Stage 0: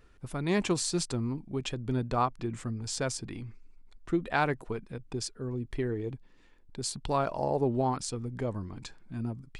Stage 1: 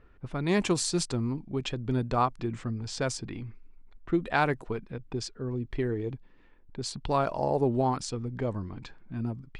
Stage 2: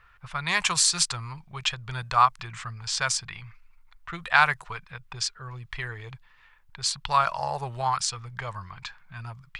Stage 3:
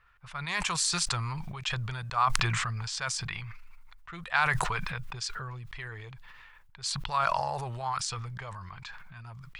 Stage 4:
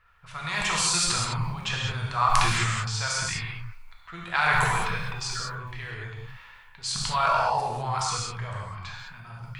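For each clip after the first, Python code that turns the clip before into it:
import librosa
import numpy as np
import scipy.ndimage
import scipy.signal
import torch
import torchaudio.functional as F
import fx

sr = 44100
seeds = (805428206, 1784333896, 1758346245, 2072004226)

y1 = fx.env_lowpass(x, sr, base_hz=2100.0, full_db=-24.5)
y1 = y1 * 10.0 ** (2.0 / 20.0)
y2 = fx.curve_eq(y1, sr, hz=(160.0, 260.0, 1100.0), db=(0, -23, 14))
y2 = y2 * 10.0 ** (-4.0 / 20.0)
y3 = fx.sustainer(y2, sr, db_per_s=21.0)
y3 = y3 * 10.0 ** (-7.5 / 20.0)
y4 = fx.rev_gated(y3, sr, seeds[0], gate_ms=230, shape='flat', drr_db=-3.5)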